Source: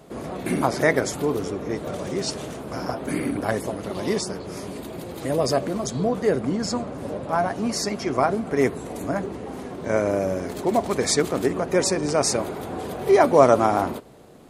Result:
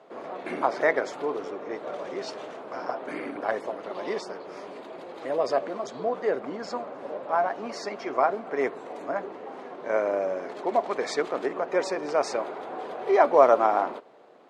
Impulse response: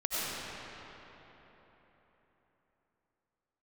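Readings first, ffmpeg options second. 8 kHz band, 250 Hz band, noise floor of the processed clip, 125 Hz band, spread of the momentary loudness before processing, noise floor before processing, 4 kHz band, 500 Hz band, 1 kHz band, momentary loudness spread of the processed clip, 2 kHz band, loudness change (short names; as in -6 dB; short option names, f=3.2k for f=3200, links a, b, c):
-17.5 dB, -11.0 dB, -43 dBFS, -21.0 dB, 12 LU, -36 dBFS, -10.5 dB, -3.5 dB, -1.0 dB, 14 LU, -3.0 dB, -4.0 dB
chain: -af "highpass=550,lowpass=4.7k,highshelf=f=2.5k:g=-11.5,volume=1dB"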